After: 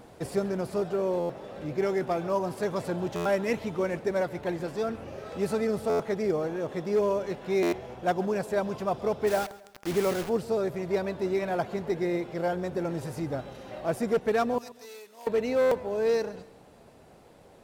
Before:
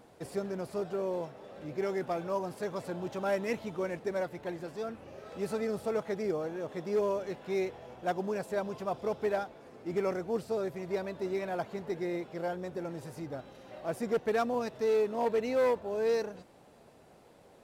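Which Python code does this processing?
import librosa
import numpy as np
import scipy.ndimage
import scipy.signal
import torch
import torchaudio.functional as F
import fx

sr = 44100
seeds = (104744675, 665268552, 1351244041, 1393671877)

p1 = fx.low_shelf(x, sr, hz=100.0, db=6.5)
p2 = fx.rider(p1, sr, range_db=5, speed_s=0.5)
p3 = p1 + F.gain(torch.from_numpy(p2), -3.0).numpy()
p4 = fx.quant_dither(p3, sr, seeds[0], bits=6, dither='none', at=(9.26, 10.28), fade=0.02)
p5 = fx.pre_emphasis(p4, sr, coefficient=0.97, at=(14.58, 15.27))
p6 = p5 + fx.echo_feedback(p5, sr, ms=136, feedback_pct=38, wet_db=-19.0, dry=0)
y = fx.buffer_glitch(p6, sr, at_s=(1.19, 3.15, 5.89, 7.62, 15.61), block=512, repeats=8)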